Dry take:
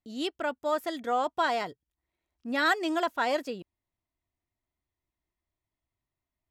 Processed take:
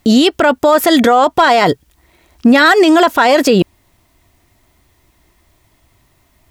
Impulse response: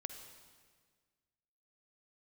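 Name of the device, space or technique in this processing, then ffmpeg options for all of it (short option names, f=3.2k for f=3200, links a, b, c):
loud club master: -af "acompressor=threshold=-32dB:ratio=2,asoftclip=type=hard:threshold=-23.5dB,alimiter=level_in=34.5dB:limit=-1dB:release=50:level=0:latency=1,volume=-1dB"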